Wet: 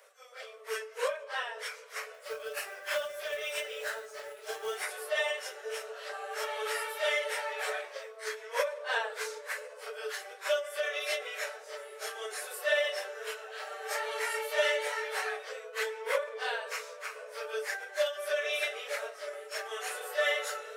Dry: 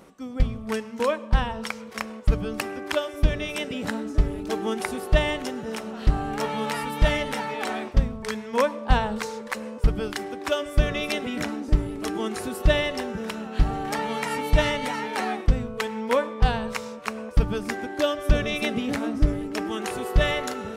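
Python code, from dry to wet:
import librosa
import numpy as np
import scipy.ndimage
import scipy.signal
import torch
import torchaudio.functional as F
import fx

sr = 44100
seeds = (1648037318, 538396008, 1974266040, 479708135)

y = fx.phase_scramble(x, sr, seeds[0], window_ms=100)
y = scipy.signal.sosfilt(scipy.signal.cheby1(6, 9, 420.0, 'highpass', fs=sr, output='sos'), y)
y = fx.high_shelf(y, sr, hz=3900.0, db=11.5)
y = fx.quant_float(y, sr, bits=2, at=(2.14, 4.84))
y = fx.end_taper(y, sr, db_per_s=130.0)
y = F.gain(torch.from_numpy(y), -2.5).numpy()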